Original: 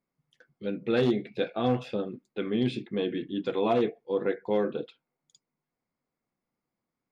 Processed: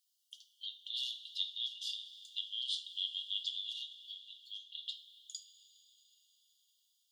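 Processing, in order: compressor, threshold -34 dBFS, peak gain reduction 13.5 dB; brick-wall FIR high-pass 2800 Hz; two-slope reverb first 0.32 s, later 4.9 s, from -18 dB, DRR 4 dB; gain +15 dB

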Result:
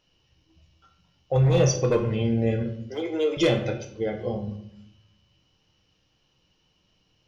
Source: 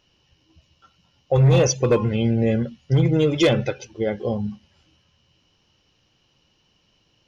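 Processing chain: 2.79–3.37 steep high-pass 320 Hz; shoebox room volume 150 m³, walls mixed, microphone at 0.56 m; gain -5.5 dB

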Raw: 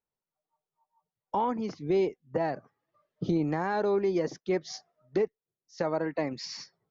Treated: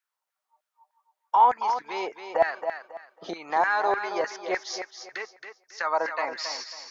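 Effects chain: LFO high-pass saw down 3.3 Hz 680–1700 Hz; thinning echo 0.273 s, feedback 28%, high-pass 160 Hz, level -8 dB; gain +5.5 dB

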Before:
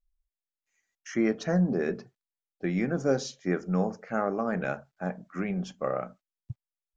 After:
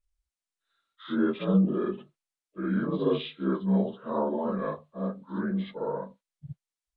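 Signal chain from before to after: inharmonic rescaling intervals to 83%; reverse echo 57 ms -4 dB

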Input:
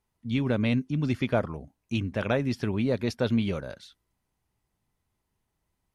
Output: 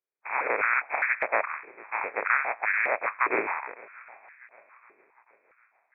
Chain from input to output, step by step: spectral contrast lowered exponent 0.16; gate -44 dBFS, range -15 dB; inverted band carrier 2500 Hz; on a send: swung echo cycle 0.753 s, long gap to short 1.5:1, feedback 41%, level -21.5 dB; on the sum: stepped high-pass 4.9 Hz 390–1700 Hz

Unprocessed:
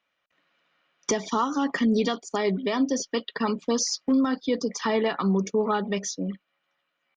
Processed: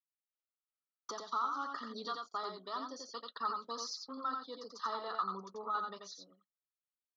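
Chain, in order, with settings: double band-pass 2300 Hz, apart 1.7 oct; in parallel at -8 dB: soft clip -29.5 dBFS, distortion -13 dB; on the sum: high shelf 2400 Hz -8.5 dB; expander -47 dBFS; negative-ratio compressor -31 dBFS, ratio -1; on a send: echo 88 ms -4.5 dB; on the sum: gain -1 dB

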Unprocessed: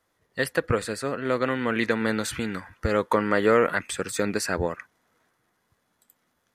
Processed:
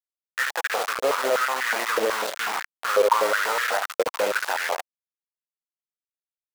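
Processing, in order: recorder AGC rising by 5.5 dB/s; in parallel at -7.5 dB: decimation with a swept rate 16×, swing 100% 0.53 Hz; on the sum: LPF 3300 Hz 12 dB/oct; on a send: flutter echo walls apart 11.9 m, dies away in 0.48 s; on the sum: flange 0.63 Hz, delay 7.4 ms, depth 1.6 ms, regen -59%; limiter -17.5 dBFS, peak gain reduction 11 dB; bit-crush 5-bit; stepped high-pass 8.1 Hz 500–1700 Hz; gain +2.5 dB

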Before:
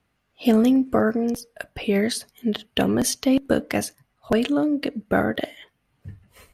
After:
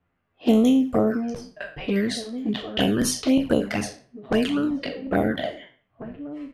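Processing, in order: spectral trails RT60 0.43 s; outdoor echo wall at 290 m, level -13 dB; envelope flanger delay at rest 11.6 ms, full sweep at -14 dBFS; low-pass opened by the level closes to 2000 Hz, open at -17.5 dBFS

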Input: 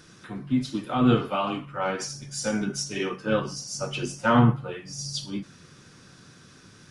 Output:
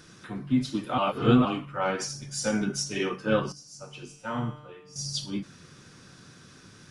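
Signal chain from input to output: 0.98–1.45 reverse; 3.52–4.96 resonator 150 Hz, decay 1.1 s, harmonics all, mix 80%

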